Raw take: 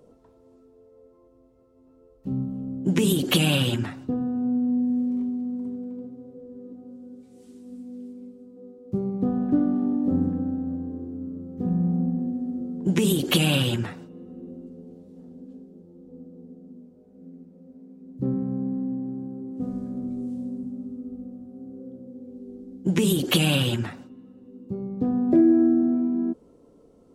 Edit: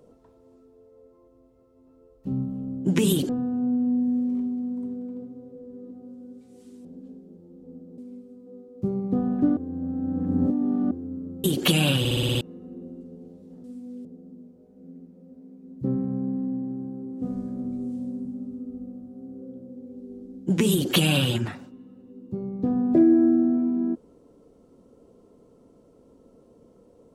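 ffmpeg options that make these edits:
-filter_complex "[0:a]asplit=16[a][b][c][d][e][f][g][h][i][j][k][l][m][n][o][p];[a]atrim=end=3.292[q];[b]atrim=start=4.108:end=7.672[r];[c]atrim=start=15.298:end=16.432[s];[d]atrim=start=8.078:end=9.672[t];[e]atrim=start=9.668:end=11.012,asetpts=PTS-STARTPTS,areverse[u];[f]atrim=start=11.008:end=11.542[v];[g]atrim=start=13.098:end=13.712[w];[h]atrim=start=13.648:end=13.712[x];[i]atrim=start=13.648:end=13.712[y];[j]atrim=start=13.648:end=13.712[z];[k]atrim=start=13.648:end=13.712[aa];[l]atrim=start=13.648:end=13.712[ab];[m]atrim=start=13.648:end=13.712[ac];[n]atrim=start=14.068:end=15.302[ad];[o]atrim=start=7.668:end=8.082[ae];[p]atrim=start=16.428[af];[q][r]acrossfade=d=0.004:c1=hsin:c2=hsin[ag];[ag][s]acrossfade=d=0.004:c1=hsin:c2=hsin[ah];[ah][t]acrossfade=d=0.004:c1=hsin:c2=hsin[ai];[ai][u]acrossfade=d=0.004:c1=hsin:c2=hsin[aj];[aj][v]acrossfade=d=0.004:c1=hsin:c2=hsin[ak];[ak][w]acrossfade=d=0.004:c1=hsin:c2=hsin[al];[al][x]acrossfade=d=0.004:c1=hsin:c2=hsin[am];[am][y]acrossfade=d=0.004:c1=hsin:c2=hsin[an];[an][z]acrossfade=d=0.004:c1=hsin:c2=hsin[ao];[ao][aa]acrossfade=d=0.004:c1=hsin:c2=hsin[ap];[ap][ab]acrossfade=d=0.004:c1=hsin:c2=hsin[aq];[aq][ac]acrossfade=d=0.004:c1=hsin:c2=hsin[ar];[ar][ad]acrossfade=d=0.004:c1=hsin:c2=hsin[as];[as][ae]acrossfade=d=0.004:c1=hsin:c2=hsin[at];[at][af]acrossfade=d=0.004:c1=hsin:c2=hsin"

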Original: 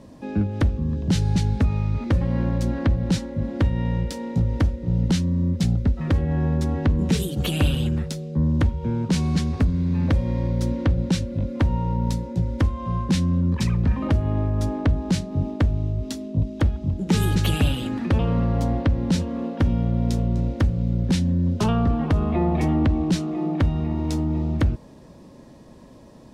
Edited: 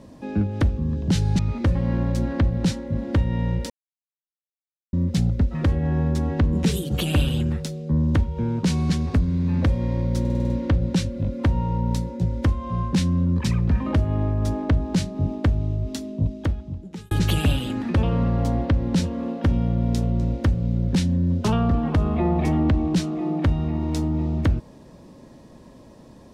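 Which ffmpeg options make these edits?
-filter_complex "[0:a]asplit=11[a][b][c][d][e][f][g][h][i][j][k];[a]atrim=end=1.392[l];[b]atrim=start=1.848:end=4.16,asetpts=PTS-STARTPTS,afade=t=out:st=2.308:d=0.004:c=hsin[m];[c]atrim=start=4.16:end=5.39,asetpts=PTS-STARTPTS,volume=0[n];[d]atrim=start=5.39:end=10.712,asetpts=PTS-STARTPTS,afade=t=in:d=0.004:c=hsin[o];[e]atrim=start=10.658:end=10.712[p];[f]atrim=start=10.658:end=10.712[q];[g]atrim=start=10.658:end=10.712[r];[h]atrim=start=10.658:end=10.712[s];[i]atrim=start=10.658:end=10.712[t];[j]atrim=start=10.658:end=17.27,asetpts=PTS-STARTPTS,afade=t=out:st=5.672:d=0.94[u];[k]atrim=start=17.27,asetpts=PTS-STARTPTS,afade=t=in:d=0.004:c=hsin[v];[m][n][o]concat=n=3:v=0:a=1[w];[l][w]acrossfade=d=0.004:c1=hsin:c2=hsin[x];[x][p]acrossfade=d=0.004:c1=hsin:c2=hsin[y];[y][q]acrossfade=d=0.004:c1=hsin:c2=hsin[z];[z][r]acrossfade=d=0.004:c1=hsin:c2=hsin[aa];[aa][s]acrossfade=d=0.004:c1=hsin:c2=hsin[ab];[ab][t]acrossfade=d=0.004:c1=hsin:c2=hsin[ac];[u][v]concat=n=2:v=0:a=1[ad];[ac][ad]acrossfade=d=0.004:c1=hsin:c2=hsin"

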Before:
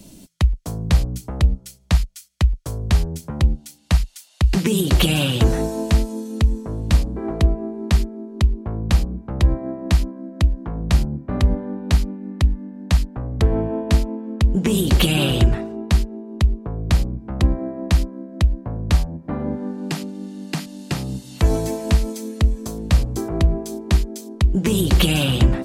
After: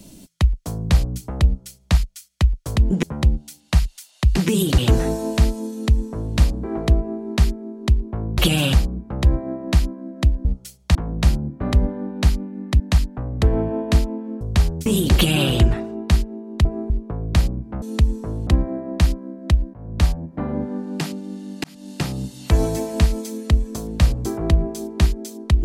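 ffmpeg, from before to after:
-filter_complex "[0:a]asplit=17[a][b][c][d][e][f][g][h][i][j][k][l][m][n][o][p][q];[a]atrim=end=2.762[r];[b]atrim=start=14.398:end=14.672[s];[c]atrim=start=3.208:end=4.962[t];[d]atrim=start=5.308:end=8.912[u];[e]atrim=start=4.958:end=5.312[v];[f]atrim=start=8.908:end=10.632[w];[g]atrim=start=1.458:end=1.962[x];[h]atrim=start=10.628:end=12.482[y];[i]atrim=start=12.788:end=14.402[z];[j]atrim=start=2.758:end=3.212[aa];[k]atrim=start=14.668:end=16.462[ab];[l]atrim=start=7.508:end=7.762[ac];[m]atrim=start=16.458:end=17.382[ad];[n]atrim=start=6.238:end=6.892[ae];[o]atrim=start=17.378:end=18.65,asetpts=PTS-STARTPTS,afade=t=out:st=1.268:d=0.004:c=hsin:silence=0.133352[af];[p]atrim=start=18.65:end=20.55,asetpts=PTS-STARTPTS,afade=t=in:d=0.32:silence=0.133352,afade=t=out:st=1.896:d=0.004:c=hsin[ag];[q]atrim=start=20.55,asetpts=PTS-STARTPTS,afade=t=in:d=0.26[ah];[r][s]acrossfade=d=0.004:c1=hsin:c2=hsin[ai];[ai][t]acrossfade=d=0.004:c1=hsin:c2=hsin[aj];[aj][u]acrossfade=d=0.004:c1=hsin:c2=hsin[ak];[ak][v]acrossfade=d=0.004:c1=hsin:c2=hsin[al];[al][w]acrossfade=d=0.004:c1=hsin:c2=hsin[am];[am][x]acrossfade=d=0.004:c1=hsin:c2=hsin[an];[an][y]acrossfade=d=0.004:c1=hsin:c2=hsin[ao];[ao][z]acrossfade=d=0.004:c1=hsin:c2=hsin[ap];[ap][aa]acrossfade=d=0.004:c1=hsin:c2=hsin[aq];[aq][ab]acrossfade=d=0.004:c1=hsin:c2=hsin[ar];[ar][ac]acrossfade=d=0.004:c1=hsin:c2=hsin[as];[as][ad]acrossfade=d=0.004:c1=hsin:c2=hsin[at];[at][ae]acrossfade=d=0.004:c1=hsin:c2=hsin[au];[af][ag][ah]concat=n=3:v=0:a=1[av];[au][av]acrossfade=d=0.004:c1=hsin:c2=hsin"

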